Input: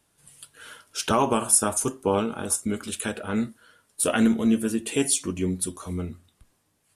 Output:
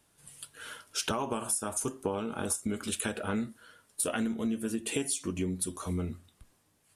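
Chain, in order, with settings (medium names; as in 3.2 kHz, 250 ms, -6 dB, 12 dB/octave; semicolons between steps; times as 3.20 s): compression 10:1, threshold -28 dBFS, peak gain reduction 14.5 dB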